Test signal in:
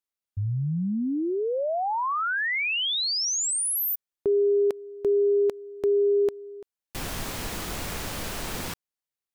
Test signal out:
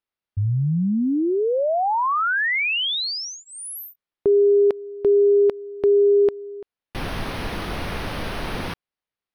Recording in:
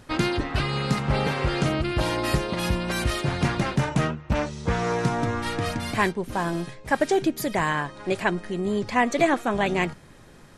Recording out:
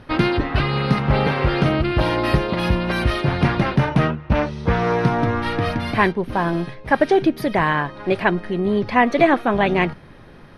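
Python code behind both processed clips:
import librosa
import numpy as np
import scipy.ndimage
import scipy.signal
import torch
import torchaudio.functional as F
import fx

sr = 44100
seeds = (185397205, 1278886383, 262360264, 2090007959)

y = np.convolve(x, np.full(6, 1.0 / 6))[:len(x)]
y = y * librosa.db_to_amplitude(6.0)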